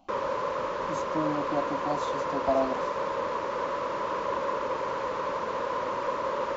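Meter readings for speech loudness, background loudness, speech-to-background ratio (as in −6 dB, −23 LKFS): −32.5 LKFS, −30.5 LKFS, −2.0 dB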